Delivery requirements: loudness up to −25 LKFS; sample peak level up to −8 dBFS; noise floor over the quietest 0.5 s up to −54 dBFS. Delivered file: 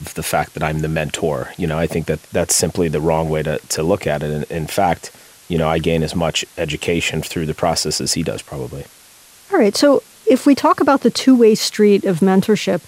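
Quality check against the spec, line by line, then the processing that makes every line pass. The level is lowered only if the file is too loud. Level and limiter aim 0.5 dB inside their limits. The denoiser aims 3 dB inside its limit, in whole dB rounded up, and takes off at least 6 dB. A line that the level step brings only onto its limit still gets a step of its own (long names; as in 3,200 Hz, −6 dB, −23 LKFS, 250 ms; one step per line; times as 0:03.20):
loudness −17.0 LKFS: out of spec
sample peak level −2.5 dBFS: out of spec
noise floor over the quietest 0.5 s −46 dBFS: out of spec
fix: level −8.5 dB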